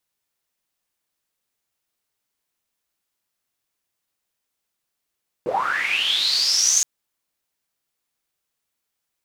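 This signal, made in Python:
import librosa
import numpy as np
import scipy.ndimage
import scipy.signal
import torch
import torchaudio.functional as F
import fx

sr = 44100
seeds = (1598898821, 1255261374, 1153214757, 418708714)

y = fx.riser_noise(sr, seeds[0], length_s=1.37, colour='pink', kind='bandpass', start_hz=370.0, end_hz=6600.0, q=12.0, swell_db=6.5, law='linear')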